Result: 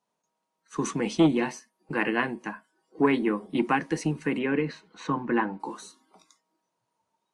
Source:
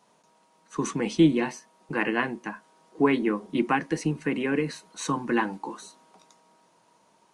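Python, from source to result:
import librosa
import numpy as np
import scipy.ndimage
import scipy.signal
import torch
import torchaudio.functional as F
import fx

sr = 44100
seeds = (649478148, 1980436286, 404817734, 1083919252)

y = fx.noise_reduce_blind(x, sr, reduce_db=18)
y = fx.lowpass(y, sr, hz=fx.line((4.38, 4400.0), (5.59, 1900.0)), slope=12, at=(4.38, 5.59), fade=0.02)
y = fx.transformer_sat(y, sr, knee_hz=370.0)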